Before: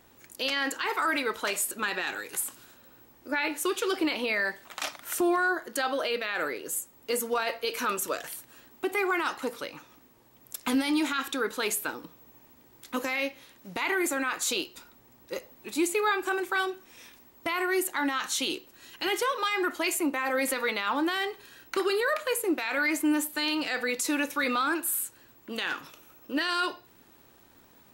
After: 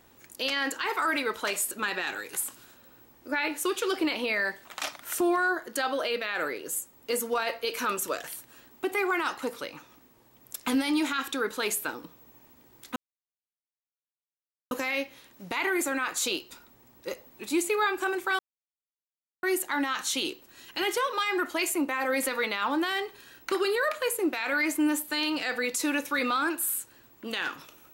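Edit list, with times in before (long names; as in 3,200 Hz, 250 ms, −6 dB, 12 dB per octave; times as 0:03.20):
0:12.96: splice in silence 1.75 s
0:16.64–0:17.68: silence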